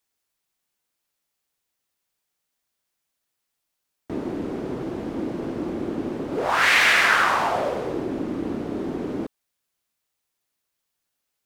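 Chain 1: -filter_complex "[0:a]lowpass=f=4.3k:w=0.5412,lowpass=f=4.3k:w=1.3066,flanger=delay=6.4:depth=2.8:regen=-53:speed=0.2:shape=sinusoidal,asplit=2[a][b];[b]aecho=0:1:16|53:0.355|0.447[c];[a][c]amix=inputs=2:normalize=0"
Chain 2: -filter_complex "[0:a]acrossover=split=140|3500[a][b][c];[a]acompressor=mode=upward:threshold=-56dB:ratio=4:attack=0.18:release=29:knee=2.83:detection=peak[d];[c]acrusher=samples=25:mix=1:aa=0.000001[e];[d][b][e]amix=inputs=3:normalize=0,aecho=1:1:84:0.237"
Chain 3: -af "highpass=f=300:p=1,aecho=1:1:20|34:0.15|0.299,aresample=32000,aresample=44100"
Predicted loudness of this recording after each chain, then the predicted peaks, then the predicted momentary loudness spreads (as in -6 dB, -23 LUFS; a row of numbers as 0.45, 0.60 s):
-26.0, -23.5, -23.0 LUFS; -7.5, -6.0, -5.0 dBFS; 15, 14, 17 LU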